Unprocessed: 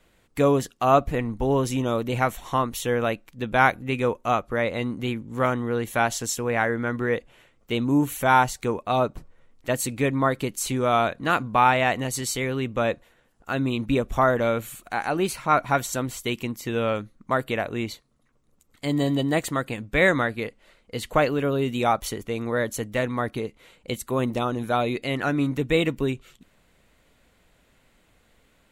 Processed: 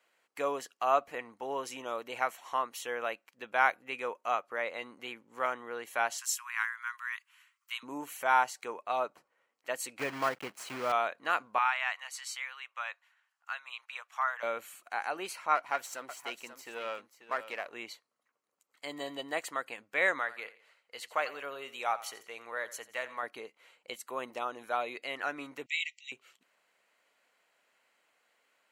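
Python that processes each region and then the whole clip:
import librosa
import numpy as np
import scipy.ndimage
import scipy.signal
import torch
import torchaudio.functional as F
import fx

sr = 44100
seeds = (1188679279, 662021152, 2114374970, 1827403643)

y = fx.chain(x, sr, fx.steep_highpass(hz=980.0, slope=72),
    fx.high_shelf(hz=7100.0, db=11.0), at=(6.18, 7.83))
y = fx.chain(y, sr, fx.block_float(bits=3),
    fx.bass_treble(bass_db=12, treble_db=-9), at=(9.99, 10.92))
y = fx.chain(y, sr, fx.highpass(hz=1000.0, slope=24),
    fx.high_shelf(hz=9700.0, db=-9.5), at=(11.58, 14.43))
y = fx.chain(y, sr, fx.halfwave_gain(db=-7.0),
    fx.echo_single(ms=538, db=-11.5), at=(15.55, 17.74))
y = fx.chain(y, sr, fx.peak_eq(hz=230.0, db=-8.5, octaves=2.3),
    fx.echo_feedback(ms=86, feedback_pct=38, wet_db=-16.5), at=(20.19, 23.23))
y = fx.chain(y, sr, fx.brickwall_bandpass(low_hz=1900.0, high_hz=7900.0),
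    fx.high_shelf(hz=2900.0, db=7.0), at=(25.66, 26.12))
y = scipy.signal.sosfilt(scipy.signal.butter(2, 690.0, 'highpass', fs=sr, output='sos'), y)
y = fx.peak_eq(y, sr, hz=14000.0, db=-6.0, octaves=1.5)
y = fx.notch(y, sr, hz=3600.0, q=8.5)
y = y * 10.0 ** (-6.0 / 20.0)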